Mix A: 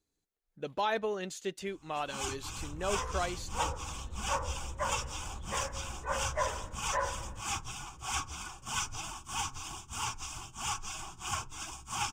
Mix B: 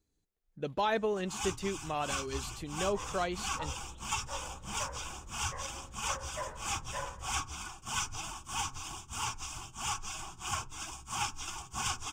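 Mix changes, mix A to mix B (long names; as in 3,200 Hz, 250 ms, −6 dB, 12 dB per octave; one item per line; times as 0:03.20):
speech: add low-shelf EQ 240 Hz +8.5 dB
first sound: entry −0.80 s
second sound −7.5 dB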